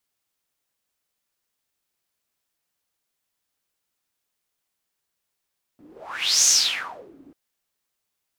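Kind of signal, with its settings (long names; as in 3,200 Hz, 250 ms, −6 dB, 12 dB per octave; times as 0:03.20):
pass-by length 1.54 s, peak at 0:00.67, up 0.65 s, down 0.75 s, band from 290 Hz, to 6,400 Hz, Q 7.3, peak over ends 33 dB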